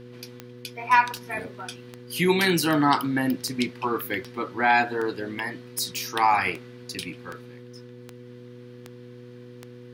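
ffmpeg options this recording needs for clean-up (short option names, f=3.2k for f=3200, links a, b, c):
-af "adeclick=t=4,bandreject=f=122.3:t=h:w=4,bandreject=f=244.6:t=h:w=4,bandreject=f=366.9:t=h:w=4,bandreject=f=489.2:t=h:w=4"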